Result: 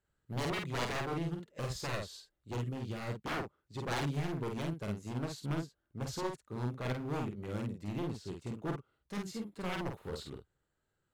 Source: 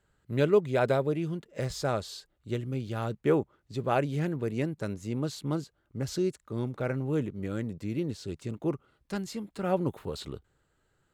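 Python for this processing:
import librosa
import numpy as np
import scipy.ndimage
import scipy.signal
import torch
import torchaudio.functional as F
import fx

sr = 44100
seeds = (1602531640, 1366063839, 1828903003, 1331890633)

y = fx.dynamic_eq(x, sr, hz=300.0, q=5.6, threshold_db=-44.0, ratio=4.0, max_db=-5)
y = 10.0 ** (-28.0 / 20.0) * (np.abs((y / 10.0 ** (-28.0 / 20.0) + 3.0) % 4.0 - 2.0) - 1.0)
y = fx.doubler(y, sr, ms=49.0, db=-3.0)
y = fx.upward_expand(y, sr, threshold_db=-47.0, expansion=1.5)
y = y * librosa.db_to_amplitude(-2.5)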